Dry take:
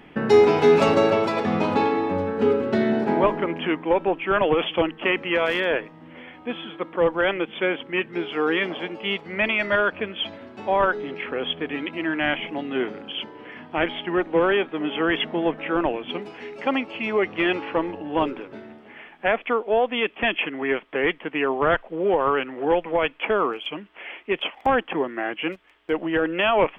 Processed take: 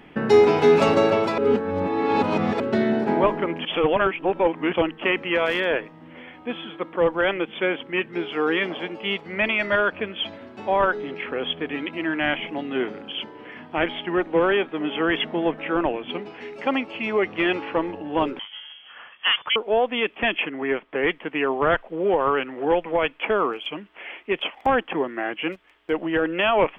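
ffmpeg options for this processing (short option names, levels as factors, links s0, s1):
-filter_complex "[0:a]asettb=1/sr,asplit=3[s0][s1][s2];[s0]atrim=end=15.744[s3];[s1]atrim=start=15.74:end=16.41,asetpts=PTS-STARTPTS,afade=t=in:d=0.004:c=qsin,afade=t=out:st=0.666:d=0.004:c=qsin,lowpass=4800[s4];[s2]atrim=start=16.406[s5];[s3][s4]acrossfade=d=0.004:c1=hsin:c2=qsin[s6];[s6][s5]acrossfade=d=0.004:c1=qsin:c2=hsin,asettb=1/sr,asplit=3[s7][s8][s9];[s7]atrim=end=18.394[s10];[s8]atrim=start=18.39:end=19.56,asetpts=PTS-STARTPTS,afade=t=in:d=0.004:c=qsin,afade=t=out:st=1.166:d=0.004:c=qsin,lowpass=f=3000:t=q:w=0.5098,lowpass=f=3000:t=q:w=0.6013,lowpass=f=3000:t=q:w=0.9,lowpass=f=3000:t=q:w=2.563,afreqshift=-3500[s11];[s9]atrim=start=19.556[s12];[s10][s11]acrossfade=d=0.004:c1=hsin:c2=qsin[s13];[s13][s12]acrossfade=d=0.004:c1=qsin:c2=hsin,asettb=1/sr,asplit=3[s14][s15][s16];[s14]atrim=end=20.454[s17];[s15]atrim=start=20.45:end=21.03,asetpts=PTS-STARTPTS,afade=t=in:d=0.004:c=qsin,afade=t=out:st=0.576:d=0.004:c=qsin,highshelf=f=3400:g=-8.5[s18];[s16]atrim=start=21.026[s19];[s17][s18]acrossfade=d=0.004:c1=hsin:c2=qsin[s20];[s20][s19]acrossfade=d=0.004:c1=qsin:c2=hsin,asplit=5[s21][s22][s23][s24][s25];[s21]atrim=end=1.382[s26];[s22]atrim=start=1.378:end=2.602,asetpts=PTS-STARTPTS,areverse[s27];[s23]atrim=start=2.598:end=3.652[s28];[s24]atrim=start=3.648:end=4.732,asetpts=PTS-STARTPTS,areverse[s29];[s25]atrim=start=4.728[s30];[s26][s27]acrossfade=d=0.004:c1=hsin:c2=hsin[s31];[s31][s28]acrossfade=d=0.004:c1=hsin:c2=hsin[s32];[s32][s29]acrossfade=d=0.004:c1=hsin:c2=hsin[s33];[s33][s30]acrossfade=d=0.004:c1=hsin:c2=hsin"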